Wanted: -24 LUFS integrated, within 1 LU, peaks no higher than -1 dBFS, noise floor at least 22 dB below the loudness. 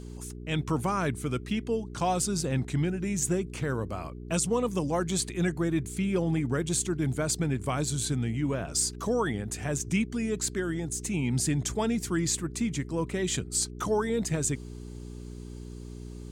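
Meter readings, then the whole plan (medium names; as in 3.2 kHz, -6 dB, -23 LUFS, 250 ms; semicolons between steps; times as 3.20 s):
hum 60 Hz; highest harmonic 420 Hz; hum level -38 dBFS; loudness -29.5 LUFS; peak level -15.5 dBFS; loudness target -24.0 LUFS
-> de-hum 60 Hz, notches 7; trim +5.5 dB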